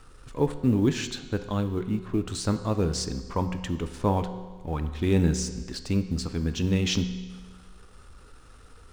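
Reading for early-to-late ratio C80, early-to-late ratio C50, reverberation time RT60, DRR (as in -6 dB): 12.0 dB, 11.0 dB, 1.4 s, 9.0 dB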